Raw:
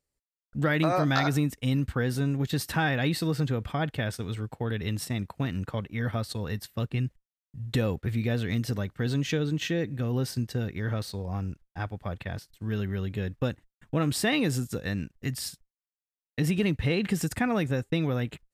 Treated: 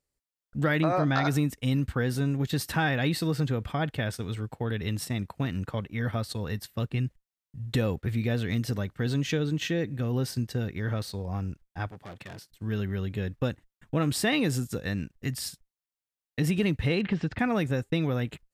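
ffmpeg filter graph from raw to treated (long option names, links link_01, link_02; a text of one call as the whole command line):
ffmpeg -i in.wav -filter_complex "[0:a]asettb=1/sr,asplit=3[link_01][link_02][link_03];[link_01]atrim=end=0.804[link_04];[link_02]atrim=start=0.8:end=1.25,asetpts=PTS-STARTPTS,afade=type=in:duration=0.004:curve=qsin,afade=type=out:start_time=0.446:duration=0.004:curve=qsin,lowpass=12000,highshelf=frequency=3900:gain=-10.5[link_05];[link_03]atrim=start=1.246[link_06];[link_04][link_05]acrossfade=duration=0.004:curve1=hsin:curve2=qsin[link_07];[link_07][link_06]acrossfade=duration=0.004:curve1=qsin:curve2=hsin,asettb=1/sr,asplit=3[link_08][link_09][link_10];[link_08]atrim=end=11.914[link_11];[link_09]atrim=start=11.91:end=12.52,asetpts=PTS-STARTPTS,afade=type=in:duration=0.004:curve=qsin,afade=type=out:start_time=0.606:duration=0.004:curve=qsin,asoftclip=type=hard:threshold=-36.5dB,highpass=140[link_12];[link_10]atrim=start=12.516[link_13];[link_11][link_12]acrossfade=duration=0.004:curve1=hsin:curve2=qsin[link_14];[link_14][link_13]acrossfade=duration=0.004:curve1=qsin:curve2=hsin,asettb=1/sr,asplit=3[link_15][link_16][link_17];[link_15]atrim=end=16.994[link_18];[link_16]atrim=start=16.99:end=17.39,asetpts=PTS-STARTPTS,afade=type=in:duration=0.004:curve=qsin,afade=type=out:start_time=0.396:duration=0.004:curve=qsin,lowpass=frequency=3700:width=0.5412,lowpass=frequency=3700:width=1.3066,asoftclip=type=hard:threshold=-19dB[link_19];[link_17]atrim=start=17.386[link_20];[link_18][link_19]acrossfade=duration=0.004:curve1=hsin:curve2=qsin[link_21];[link_21][link_20]acrossfade=duration=0.004:curve1=qsin:curve2=hsin" out.wav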